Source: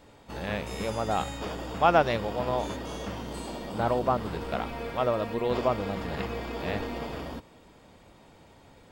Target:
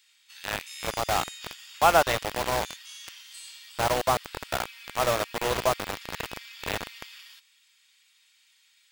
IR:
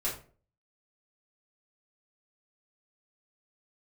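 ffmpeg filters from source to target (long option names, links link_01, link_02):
-filter_complex "[0:a]equalizer=frequency=230:width_type=o:width=1.7:gain=-12,acrossover=split=2100[link_01][link_02];[link_01]acrusher=bits=4:mix=0:aa=0.000001[link_03];[link_03][link_02]amix=inputs=2:normalize=0,volume=3.5dB"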